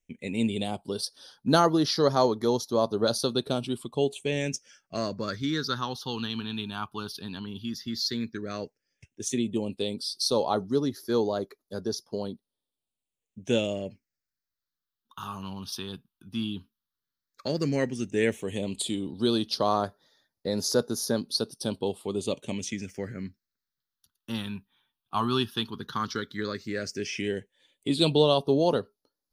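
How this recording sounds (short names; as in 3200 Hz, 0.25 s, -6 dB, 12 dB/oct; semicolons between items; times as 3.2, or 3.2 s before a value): phasing stages 6, 0.11 Hz, lowest notch 530–2500 Hz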